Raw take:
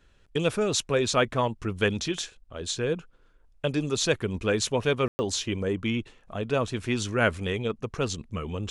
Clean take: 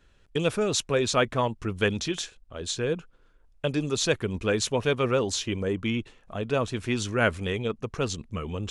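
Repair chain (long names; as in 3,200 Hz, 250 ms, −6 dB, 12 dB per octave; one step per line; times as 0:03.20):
ambience match 0:05.08–0:05.19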